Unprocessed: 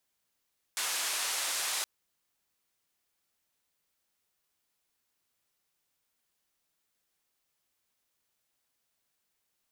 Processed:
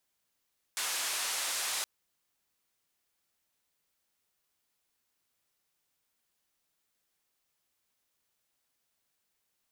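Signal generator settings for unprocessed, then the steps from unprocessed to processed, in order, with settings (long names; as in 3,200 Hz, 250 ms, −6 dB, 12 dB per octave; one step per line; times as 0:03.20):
band-limited noise 690–9,800 Hz, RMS −33 dBFS 1.07 s
soft clipping −24.5 dBFS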